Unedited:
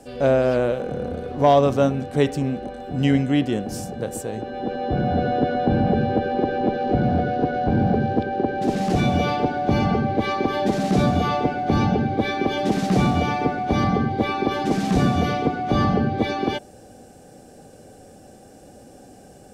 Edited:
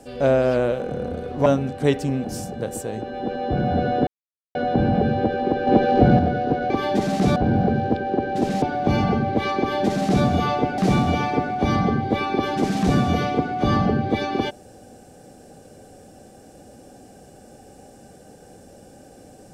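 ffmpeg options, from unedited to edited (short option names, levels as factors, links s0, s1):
-filter_complex "[0:a]asplit=10[s0][s1][s2][s3][s4][s5][s6][s7][s8][s9];[s0]atrim=end=1.462[s10];[s1]atrim=start=1.788:end=2.582[s11];[s2]atrim=start=3.648:end=5.47,asetpts=PTS-STARTPTS,afade=t=out:st=1.818:d=0.004:c=hsin,apad=pad_dur=0.48[s12];[s3]atrim=start=5.47:end=6.592,asetpts=PTS-STARTPTS,afade=t=in:d=0.004:c=hsin[s13];[s4]atrim=start=6.588:end=7.112,asetpts=PTS-STARTPTS,volume=1.88[s14];[s5]atrim=start=7.108:end=7.622[s15];[s6]atrim=start=10.408:end=11.072[s16];[s7]atrim=start=7.618:end=8.882[s17];[s8]atrim=start=9.438:end=11.602[s18];[s9]atrim=start=12.858[s19];[s10][s11]acrossfade=d=0.004:c1=hsin:c2=hsin[s20];[s12][s13]concat=n=2:v=0:a=1[s21];[s20][s21]acrossfade=d=0.004:c1=hsin:c2=hsin[s22];[s22][s14]acrossfade=d=0.004:c1=hsin:c2=hsin[s23];[s23][s15]acrossfade=d=0.004:c1=hsin:c2=hsin[s24];[s24][s16]acrossfade=d=0.004:c1=hsin:c2=hsin[s25];[s25][s17]acrossfade=d=0.004:c1=hsin:c2=hsin[s26];[s26][s18]acrossfade=d=0.004:c1=hsin:c2=hsin[s27];[s27][s19]acrossfade=d=0.004:c1=hsin:c2=hsin"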